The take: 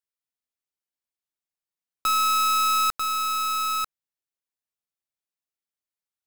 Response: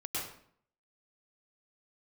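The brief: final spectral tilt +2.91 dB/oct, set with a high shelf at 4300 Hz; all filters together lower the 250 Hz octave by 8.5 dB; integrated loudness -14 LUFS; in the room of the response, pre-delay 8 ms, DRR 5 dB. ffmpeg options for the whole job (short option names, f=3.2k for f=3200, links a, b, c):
-filter_complex "[0:a]equalizer=f=250:t=o:g=-9,highshelf=f=4.3k:g=8.5,asplit=2[a][b];[1:a]atrim=start_sample=2205,adelay=8[c];[b][c]afir=irnorm=-1:irlink=0,volume=-8.5dB[d];[a][d]amix=inputs=2:normalize=0,volume=3.5dB"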